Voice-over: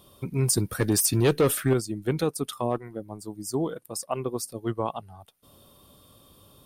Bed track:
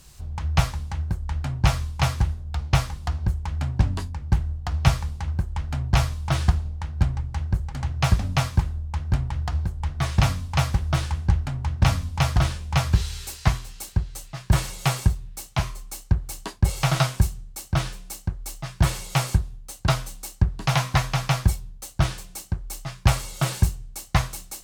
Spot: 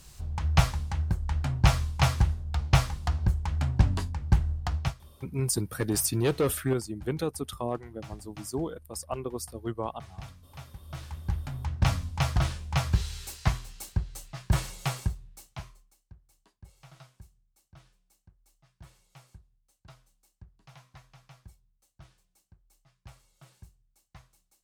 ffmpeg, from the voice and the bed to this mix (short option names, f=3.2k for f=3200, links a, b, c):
-filter_complex "[0:a]adelay=5000,volume=-4.5dB[a];[1:a]volume=16.5dB,afade=t=out:st=4.66:d=0.28:silence=0.0794328,afade=t=in:st=10.81:d=0.94:silence=0.125893,afade=t=out:st=14.47:d=1.48:silence=0.0501187[b];[a][b]amix=inputs=2:normalize=0"